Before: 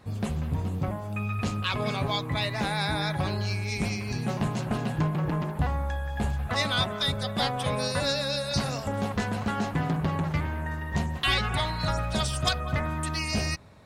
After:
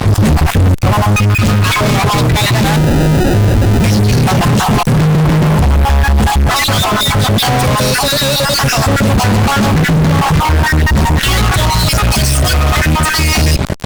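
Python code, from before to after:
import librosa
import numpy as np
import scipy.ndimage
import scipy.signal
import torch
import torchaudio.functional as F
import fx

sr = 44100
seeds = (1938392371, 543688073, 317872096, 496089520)

y = fx.spec_dropout(x, sr, seeds[0], share_pct=32)
y = fx.sample_hold(y, sr, seeds[1], rate_hz=1100.0, jitter_pct=0, at=(2.76, 3.84))
y = fx.high_shelf(y, sr, hz=3900.0, db=10.0, at=(11.72, 12.96))
y = fx.fuzz(y, sr, gain_db=50.0, gate_db=-53.0)
y = fx.rider(y, sr, range_db=10, speed_s=0.5)
y = fx.low_shelf(y, sr, hz=270.0, db=8.0)
y = fx.env_flatten(y, sr, amount_pct=50)
y = y * 10.0 ** (-3.0 / 20.0)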